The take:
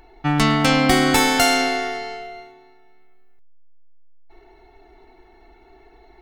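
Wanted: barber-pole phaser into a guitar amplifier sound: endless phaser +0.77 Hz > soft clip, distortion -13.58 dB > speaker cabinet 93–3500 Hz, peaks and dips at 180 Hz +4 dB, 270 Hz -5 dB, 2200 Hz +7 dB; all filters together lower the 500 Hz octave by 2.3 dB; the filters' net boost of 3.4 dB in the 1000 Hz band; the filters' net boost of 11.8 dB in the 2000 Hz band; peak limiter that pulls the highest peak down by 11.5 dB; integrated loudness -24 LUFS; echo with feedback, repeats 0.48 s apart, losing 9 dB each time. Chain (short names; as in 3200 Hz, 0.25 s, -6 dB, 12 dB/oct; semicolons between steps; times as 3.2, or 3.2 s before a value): bell 500 Hz -5.5 dB; bell 1000 Hz +4.5 dB; bell 2000 Hz +7.5 dB; limiter -10.5 dBFS; feedback echo 0.48 s, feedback 35%, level -9 dB; endless phaser +0.77 Hz; soft clip -19 dBFS; speaker cabinet 93–3500 Hz, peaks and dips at 180 Hz +4 dB, 270 Hz -5 dB, 2200 Hz +7 dB; gain -1.5 dB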